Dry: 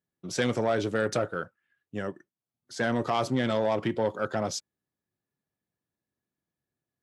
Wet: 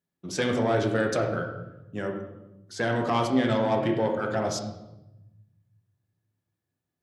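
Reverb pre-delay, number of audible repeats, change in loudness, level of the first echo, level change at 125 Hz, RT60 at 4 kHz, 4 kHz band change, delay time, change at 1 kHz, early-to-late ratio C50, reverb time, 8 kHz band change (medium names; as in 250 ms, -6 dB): 10 ms, no echo, +2.5 dB, no echo, +4.0 dB, 0.75 s, +1.0 dB, no echo, +2.5 dB, 5.5 dB, 0.95 s, 0.0 dB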